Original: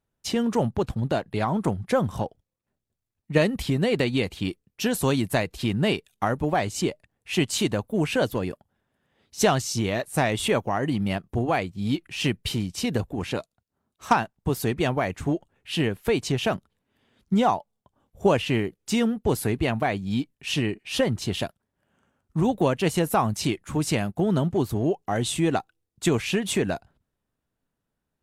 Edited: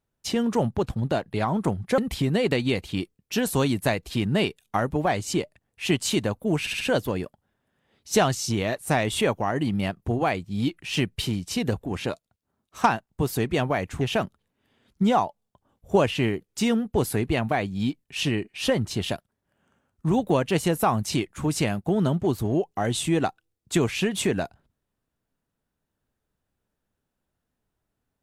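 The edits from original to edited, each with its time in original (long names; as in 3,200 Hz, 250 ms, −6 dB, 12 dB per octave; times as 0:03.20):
0:01.98–0:03.46: remove
0:08.08: stutter 0.07 s, 4 plays
0:15.28–0:16.32: remove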